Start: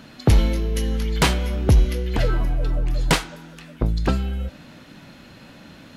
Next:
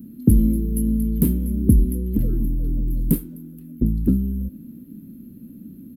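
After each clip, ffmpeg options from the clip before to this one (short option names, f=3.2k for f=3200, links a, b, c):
-af "firequalizer=gain_entry='entry(140,0);entry(220,12);entry(690,-29);entry(6400,-26);entry(12000,13)':delay=0.05:min_phase=1,volume=-1dB"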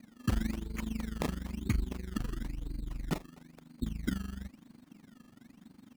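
-af "tremolo=f=24:d=0.857,tiltshelf=f=970:g=-4.5,acrusher=samples=20:mix=1:aa=0.000001:lfo=1:lforange=20:lforate=1,volume=-8.5dB"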